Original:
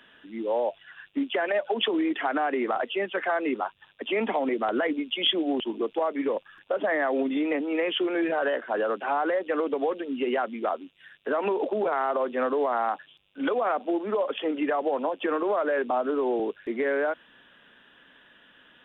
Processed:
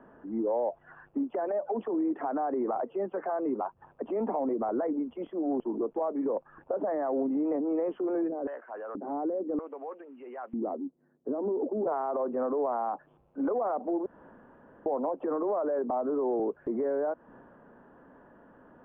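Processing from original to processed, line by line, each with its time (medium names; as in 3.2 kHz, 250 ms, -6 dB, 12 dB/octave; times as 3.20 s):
8.27–11.86 s: LFO band-pass square 1.3 Hz -> 0.21 Hz 270–2500 Hz
14.06–14.86 s: room tone
whole clip: compression 6:1, threshold -35 dBFS; low-pass 1 kHz 24 dB/octave; transient shaper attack -4 dB, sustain +3 dB; trim +8.5 dB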